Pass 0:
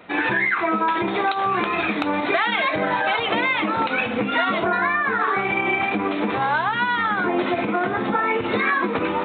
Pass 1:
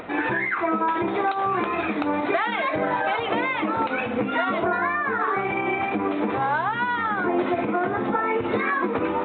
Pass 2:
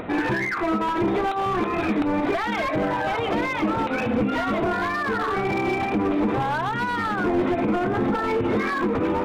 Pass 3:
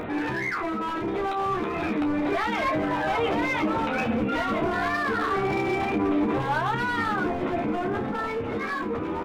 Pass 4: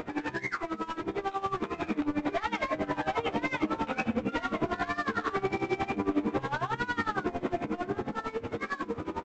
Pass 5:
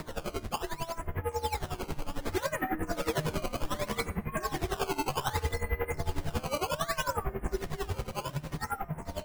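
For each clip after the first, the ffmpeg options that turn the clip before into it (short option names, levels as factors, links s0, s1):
-af "lowpass=f=1300:p=1,equalizer=f=180:w=4.4:g=-6.5,acompressor=mode=upward:threshold=0.0355:ratio=2.5"
-filter_complex "[0:a]asplit=2[s0][s1];[s1]alimiter=limit=0.15:level=0:latency=1:release=268,volume=1.41[s2];[s0][s2]amix=inputs=2:normalize=0,asoftclip=type=hard:threshold=0.178,lowshelf=f=380:g=9.5,volume=0.422"
-filter_complex "[0:a]alimiter=limit=0.0631:level=0:latency=1:release=18,dynaudnorm=f=580:g=7:m=1.5,asplit=2[s0][s1];[s1]aecho=0:1:13|30:0.531|0.355[s2];[s0][s2]amix=inputs=2:normalize=0"
-af "aresample=16000,aeval=exprs='sgn(val(0))*max(abs(val(0))-0.00501,0)':c=same,aresample=44100,aeval=exprs='val(0)*pow(10,-18*(0.5-0.5*cos(2*PI*11*n/s))/20)':c=same"
-af "highpass=f=290:t=q:w=0.5412,highpass=f=290:t=q:w=1.307,lowpass=f=2900:t=q:w=0.5176,lowpass=f=2900:t=q:w=0.7071,lowpass=f=2900:t=q:w=1.932,afreqshift=-310,acrusher=samples=14:mix=1:aa=0.000001:lfo=1:lforange=22.4:lforate=0.65,bandreject=f=305:t=h:w=4,bandreject=f=610:t=h:w=4,bandreject=f=915:t=h:w=4,bandreject=f=1220:t=h:w=4,bandreject=f=1525:t=h:w=4,bandreject=f=1830:t=h:w=4,bandreject=f=2135:t=h:w=4,bandreject=f=2440:t=h:w=4,bandreject=f=2745:t=h:w=4,bandreject=f=3050:t=h:w=4,bandreject=f=3355:t=h:w=4,bandreject=f=3660:t=h:w=4,bandreject=f=3965:t=h:w=4,bandreject=f=4270:t=h:w=4,bandreject=f=4575:t=h:w=4,bandreject=f=4880:t=h:w=4,bandreject=f=5185:t=h:w=4,bandreject=f=5490:t=h:w=4,bandreject=f=5795:t=h:w=4,bandreject=f=6100:t=h:w=4,bandreject=f=6405:t=h:w=4,bandreject=f=6710:t=h:w=4,bandreject=f=7015:t=h:w=4,bandreject=f=7320:t=h:w=4,bandreject=f=7625:t=h:w=4,bandreject=f=7930:t=h:w=4,bandreject=f=8235:t=h:w=4,bandreject=f=8540:t=h:w=4,bandreject=f=8845:t=h:w=4,bandreject=f=9150:t=h:w=4,bandreject=f=9455:t=h:w=4,bandreject=f=9760:t=h:w=4,bandreject=f=10065:t=h:w=4,bandreject=f=10370:t=h:w=4,bandreject=f=10675:t=h:w=4,bandreject=f=10980:t=h:w=4,bandreject=f=11285:t=h:w=4,bandreject=f=11590:t=h:w=4"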